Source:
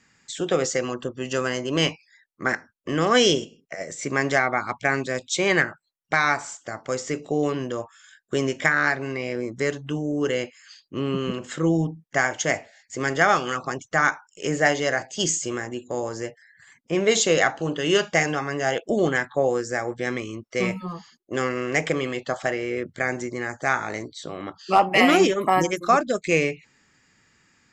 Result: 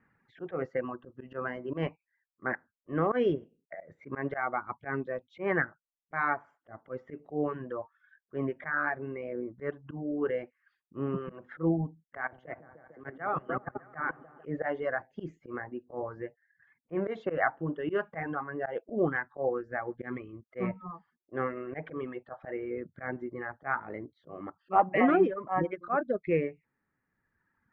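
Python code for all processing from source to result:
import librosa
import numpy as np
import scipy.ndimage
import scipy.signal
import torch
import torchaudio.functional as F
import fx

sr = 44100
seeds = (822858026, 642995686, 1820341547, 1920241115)

y = fx.chain(x, sr, fx.echo_opening(ms=150, hz=400, octaves=1, feedback_pct=70, wet_db=-3),
    fx.level_steps(step_db=12),
    fx.band_widen(depth_pct=40), at=(12.17, 14.46))
y = scipy.signal.sosfilt(scipy.signal.butter(4, 1700.0, 'lowpass', fs=sr, output='sos'), y)
y = fx.dereverb_blind(y, sr, rt60_s=1.8)
y = fx.auto_swell(y, sr, attack_ms=104.0)
y = F.gain(torch.from_numpy(y), -4.5).numpy()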